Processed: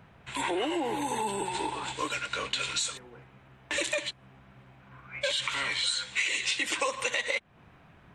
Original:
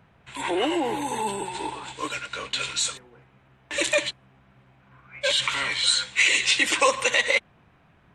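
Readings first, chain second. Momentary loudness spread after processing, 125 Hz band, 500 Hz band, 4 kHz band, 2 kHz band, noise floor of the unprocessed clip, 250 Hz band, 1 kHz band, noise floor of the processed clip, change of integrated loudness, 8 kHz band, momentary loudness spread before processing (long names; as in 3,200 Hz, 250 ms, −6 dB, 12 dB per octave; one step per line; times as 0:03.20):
6 LU, −2.0 dB, −6.5 dB, −6.5 dB, −7.0 dB, −59 dBFS, −4.5 dB, −4.5 dB, −58 dBFS, −6.5 dB, −6.5 dB, 13 LU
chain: downward compressor 4 to 1, threshold −31 dBFS, peak gain reduction 13.5 dB
level +2.5 dB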